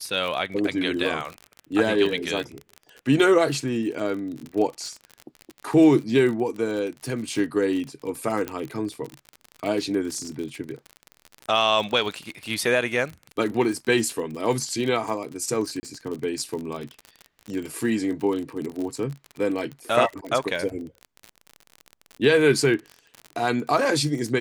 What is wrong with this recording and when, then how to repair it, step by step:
crackle 45 per s -29 dBFS
8.48 s: pop -14 dBFS
15.80–15.83 s: dropout 30 ms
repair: de-click; interpolate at 15.80 s, 30 ms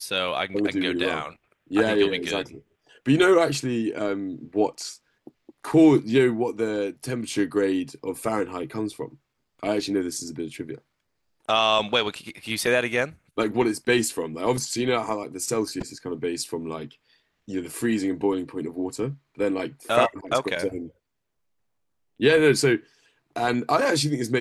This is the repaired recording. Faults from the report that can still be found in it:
nothing left

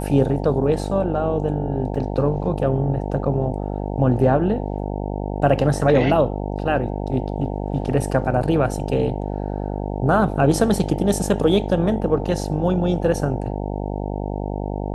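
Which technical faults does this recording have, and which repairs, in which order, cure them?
buzz 50 Hz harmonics 18 -26 dBFS
1.95 s: dropout 3.9 ms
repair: de-hum 50 Hz, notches 18; interpolate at 1.95 s, 3.9 ms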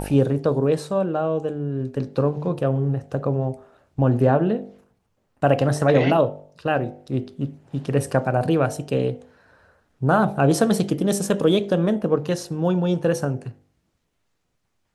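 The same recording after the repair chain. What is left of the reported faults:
nothing left

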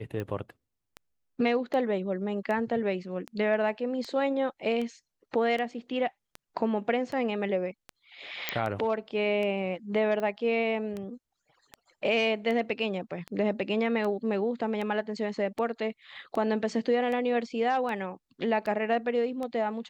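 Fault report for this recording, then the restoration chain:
tick 78 rpm -23 dBFS
8.49 s: pop -10 dBFS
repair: de-click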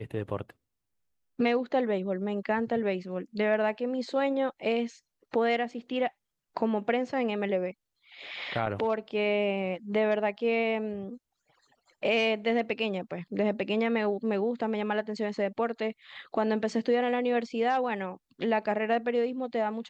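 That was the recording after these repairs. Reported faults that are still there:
nothing left

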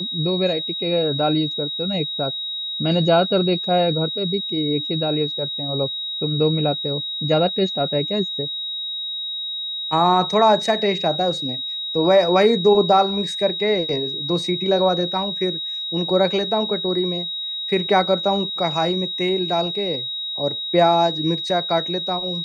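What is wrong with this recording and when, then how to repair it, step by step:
whine 3.8 kHz -25 dBFS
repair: band-stop 3.8 kHz, Q 30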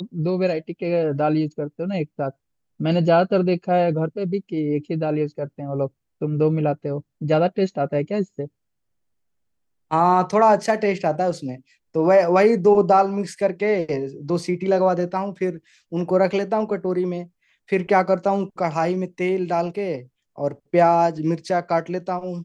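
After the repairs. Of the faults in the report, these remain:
nothing left

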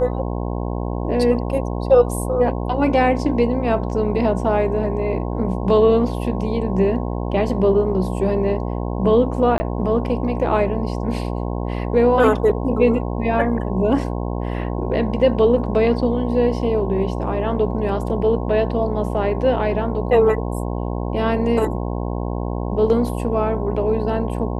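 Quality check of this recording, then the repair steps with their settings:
buzz 60 Hz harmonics 18 -24 dBFS
9.58–9.60 s: dropout 20 ms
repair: de-hum 60 Hz, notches 18; interpolate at 9.58 s, 20 ms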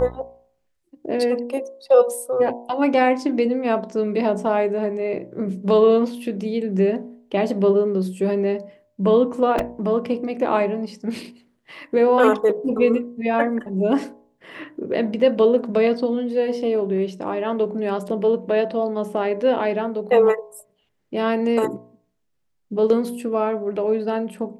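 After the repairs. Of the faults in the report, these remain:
nothing left

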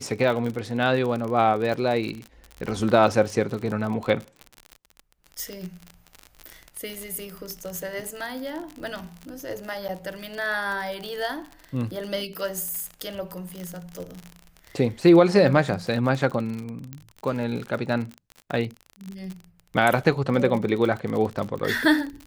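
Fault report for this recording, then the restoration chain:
crackle 43 per s -29 dBFS
1.73 s: dropout 2.4 ms
5.53 s: pop -22 dBFS
9.88–9.89 s: dropout 8.9 ms
16.93 s: pop -21 dBFS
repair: de-click; interpolate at 1.73 s, 2.4 ms; interpolate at 9.88 s, 8.9 ms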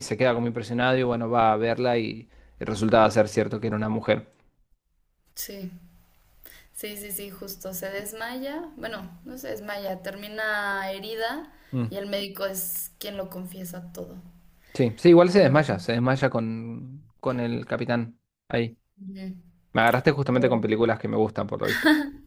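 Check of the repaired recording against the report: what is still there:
nothing left

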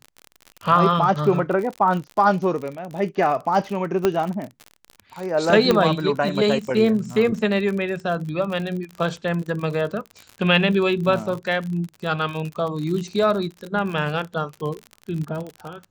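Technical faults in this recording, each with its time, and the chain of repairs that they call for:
crackle 50 per s -28 dBFS
4.05 s: pop -6 dBFS
5.71 s: pop -5 dBFS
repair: de-click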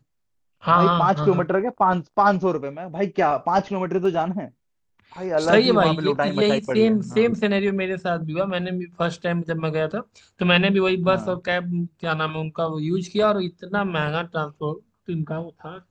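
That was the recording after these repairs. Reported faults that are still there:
4.05 s: pop

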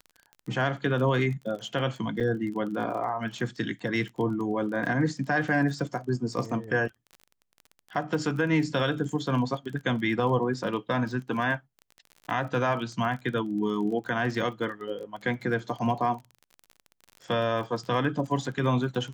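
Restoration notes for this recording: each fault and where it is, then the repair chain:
crackle 29 per s -36 dBFS
2.20–2.21 s: dropout 7.1 ms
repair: de-click; interpolate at 2.20 s, 7.1 ms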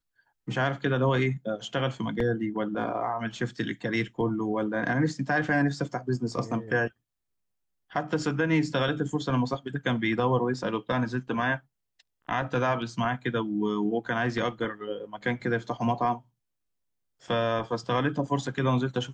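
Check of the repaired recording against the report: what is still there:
nothing left

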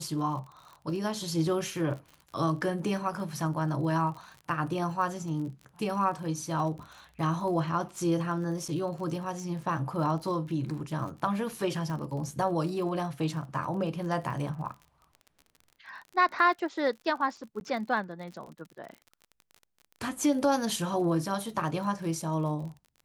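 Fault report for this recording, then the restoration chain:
crackle 43 per s -39 dBFS
8.68–8.69 s: dropout 5.8 ms
11.90 s: pop
17.60–17.61 s: dropout 11 ms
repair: de-click; interpolate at 8.68 s, 5.8 ms; interpolate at 17.60 s, 11 ms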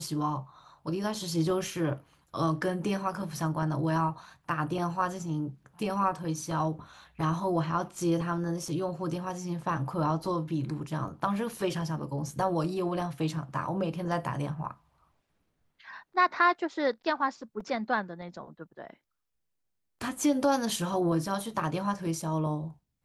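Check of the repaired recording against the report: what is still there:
11.90 s: pop

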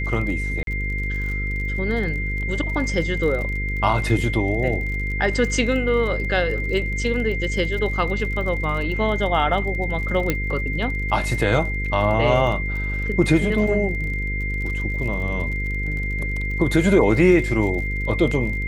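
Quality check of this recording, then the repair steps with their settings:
buzz 50 Hz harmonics 10 -26 dBFS
crackle 36 per s -30 dBFS
whine 2.1 kHz -27 dBFS
0.63–0.67 s: dropout 42 ms
10.30 s: pop -6 dBFS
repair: de-click; band-stop 2.1 kHz, Q 30; de-hum 50 Hz, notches 10; interpolate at 0.63 s, 42 ms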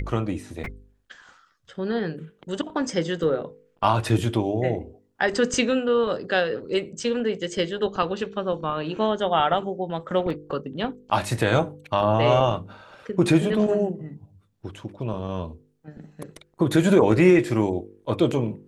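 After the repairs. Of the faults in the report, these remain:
10.30 s: pop

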